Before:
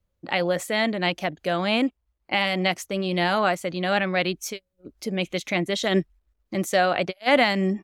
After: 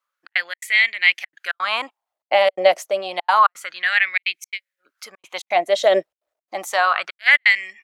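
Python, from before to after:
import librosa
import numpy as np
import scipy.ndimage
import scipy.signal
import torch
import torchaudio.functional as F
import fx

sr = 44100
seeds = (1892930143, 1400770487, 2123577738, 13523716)

y = fx.step_gate(x, sr, bpm=169, pattern='xxx.xx.xxxx', floor_db=-60.0, edge_ms=4.5)
y = fx.filter_lfo_highpass(y, sr, shape='sine', hz=0.29, low_hz=570.0, high_hz=2200.0, q=5.7)
y = y * 10.0 ** (1.0 / 20.0)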